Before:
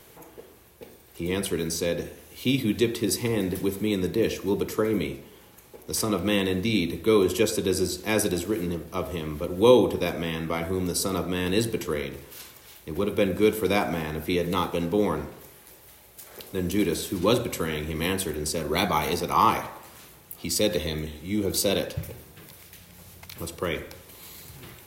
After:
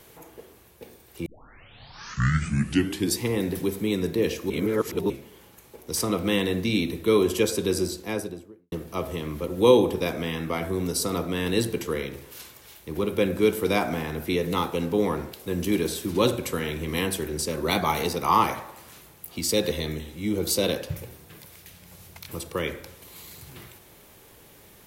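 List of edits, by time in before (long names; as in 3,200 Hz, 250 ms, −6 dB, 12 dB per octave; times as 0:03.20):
0:01.26: tape start 1.96 s
0:04.50–0:05.10: reverse
0:07.70–0:08.72: fade out and dull
0:15.33–0:16.40: remove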